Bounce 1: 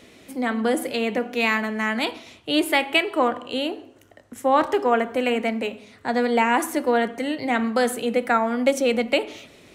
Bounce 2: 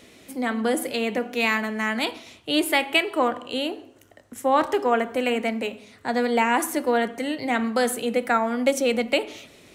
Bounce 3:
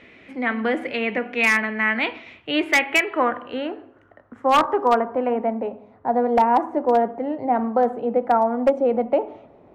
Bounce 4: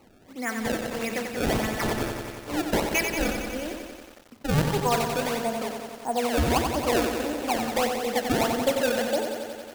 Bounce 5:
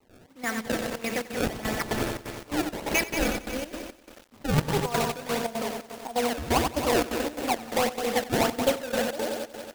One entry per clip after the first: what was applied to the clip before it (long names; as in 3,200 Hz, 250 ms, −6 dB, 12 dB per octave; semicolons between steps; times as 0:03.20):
high-shelf EQ 5,400 Hz +5 dB; level −1.5 dB
low-pass filter sweep 2,200 Hz → 830 Hz, 0:02.71–0:05.64; wave folding −8.5 dBFS
sample-and-hold swept by an LFO 25×, swing 160% 1.6 Hz; feedback echo at a low word length 91 ms, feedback 80%, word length 7 bits, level −6 dB; level −7 dB
log-companded quantiser 4 bits; gate pattern ".xx..xx.xxx.xx" 173 BPM −12 dB